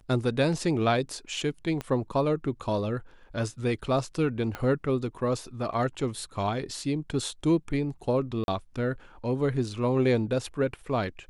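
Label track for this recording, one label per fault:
1.810000	1.810000	pop -19 dBFS
4.550000	4.550000	pop -19 dBFS
8.440000	8.480000	dropout 41 ms

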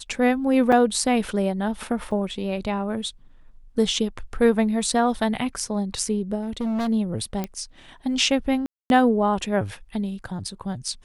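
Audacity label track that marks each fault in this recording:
0.720000	0.720000	dropout 4.6 ms
2.110000	2.110000	dropout 4.4 ms
6.410000	6.890000	clipped -22.5 dBFS
7.440000	7.440000	pop -14 dBFS
8.660000	8.900000	dropout 241 ms

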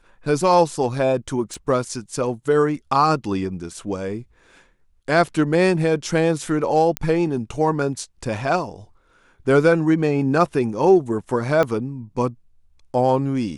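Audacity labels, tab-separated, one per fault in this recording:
1.540000	1.540000	pop
6.970000	6.970000	pop -7 dBFS
11.630000	11.630000	pop -9 dBFS

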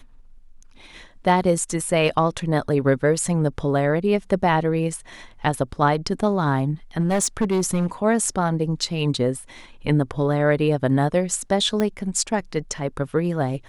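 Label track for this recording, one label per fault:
6.990000	7.860000	clipped -16 dBFS
11.800000	11.800000	pop -10 dBFS

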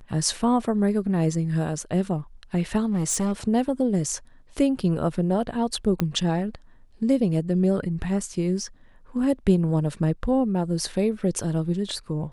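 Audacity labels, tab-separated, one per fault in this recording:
2.860000	3.330000	clipped -20.5 dBFS
6.000000	6.000000	pop -10 dBFS

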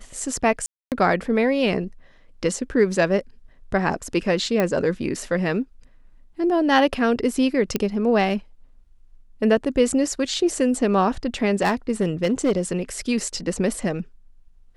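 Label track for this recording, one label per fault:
0.660000	0.920000	dropout 258 ms
4.600000	4.600000	pop -9 dBFS
7.760000	7.760000	pop -8 dBFS
11.610000	12.720000	clipped -14.5 dBFS

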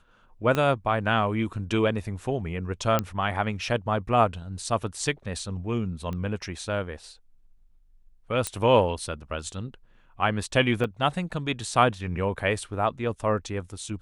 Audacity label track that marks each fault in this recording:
0.550000	0.550000	pop -12 dBFS
2.990000	2.990000	pop -10 dBFS
6.130000	6.130000	pop -22 dBFS
8.470000	8.470000	pop -12 dBFS
10.840000	10.840000	dropout 2.8 ms

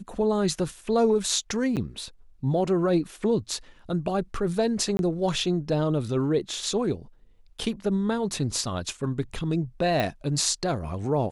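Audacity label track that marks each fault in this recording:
1.760000	1.770000	dropout 8 ms
4.970000	4.990000	dropout 21 ms
10.000000	10.000000	pop

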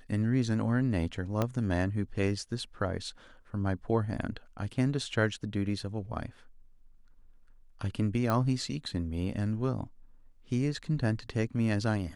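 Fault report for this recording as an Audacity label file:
1.420000	1.420000	pop -15 dBFS
8.300000	8.300000	pop -17 dBFS

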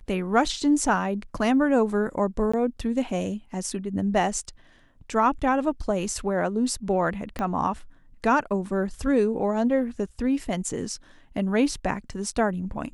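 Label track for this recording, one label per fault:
2.520000	2.540000	dropout 15 ms
7.390000	7.390000	pop -16 dBFS

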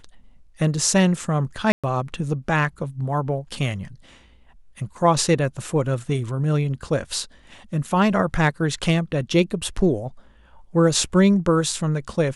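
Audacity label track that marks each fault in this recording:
1.720000	1.840000	dropout 116 ms

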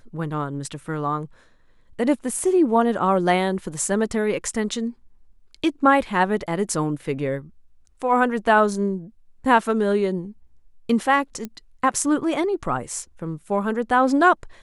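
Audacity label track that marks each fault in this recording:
11.450000	11.450000	pop -17 dBFS

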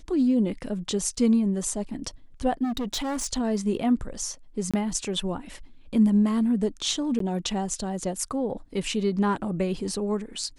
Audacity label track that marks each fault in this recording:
2.630000	3.270000	clipped -25.5 dBFS
4.710000	4.740000	dropout 26 ms
7.190000	7.200000	dropout 13 ms

